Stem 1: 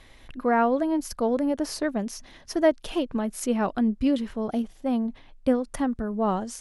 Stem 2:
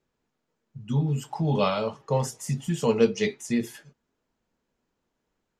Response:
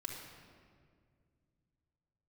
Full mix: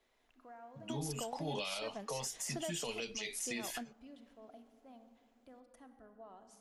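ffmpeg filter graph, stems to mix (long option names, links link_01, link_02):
-filter_complex "[0:a]lowshelf=frequency=370:gain=-11.5,alimiter=level_in=1dB:limit=-24dB:level=0:latency=1:release=181,volume=-1dB,volume=-3.5dB,asplit=2[link_01][link_02];[link_02]volume=-23.5dB[link_03];[1:a]adynamicequalizer=threshold=0.00562:dfrequency=2400:dqfactor=1.2:tfrequency=2400:tqfactor=1.2:attack=5:release=100:ratio=0.375:range=3.5:mode=boostabove:tftype=bell,highpass=320,volume=1dB,asplit=2[link_04][link_05];[link_05]apad=whole_len=291446[link_06];[link_01][link_06]sidechaingate=range=-25dB:threshold=-45dB:ratio=16:detection=peak[link_07];[2:a]atrim=start_sample=2205[link_08];[link_03][link_08]afir=irnorm=-1:irlink=0[link_09];[link_07][link_04][link_09]amix=inputs=3:normalize=0,equalizer=frequency=700:width=4.2:gain=6,acrossover=split=120|3000[link_10][link_11][link_12];[link_11]acompressor=threshold=-37dB:ratio=6[link_13];[link_10][link_13][link_12]amix=inputs=3:normalize=0,alimiter=level_in=5.5dB:limit=-24dB:level=0:latency=1:release=114,volume=-5.5dB"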